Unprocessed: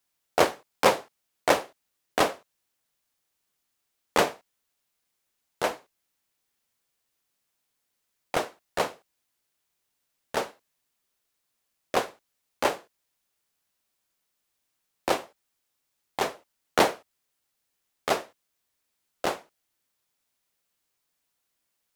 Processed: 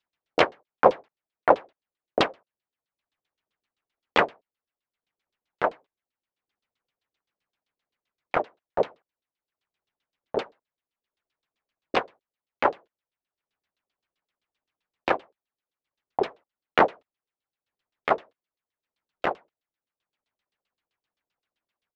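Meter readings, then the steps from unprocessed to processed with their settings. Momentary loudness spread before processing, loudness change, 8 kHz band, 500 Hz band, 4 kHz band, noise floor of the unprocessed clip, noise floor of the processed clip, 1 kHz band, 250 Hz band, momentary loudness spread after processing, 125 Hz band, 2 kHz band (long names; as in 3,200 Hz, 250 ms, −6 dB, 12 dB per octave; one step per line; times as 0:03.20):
15 LU, +1.5 dB, below −15 dB, +2.0 dB, −2.5 dB, −79 dBFS, below −85 dBFS, +2.5 dB, +0.5 dB, 11 LU, −0.5 dB, +1.5 dB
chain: downsampling to 22,050 Hz
auto-filter low-pass saw down 7.7 Hz 340–4,300 Hz
transient designer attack +4 dB, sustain −7 dB
level −3.5 dB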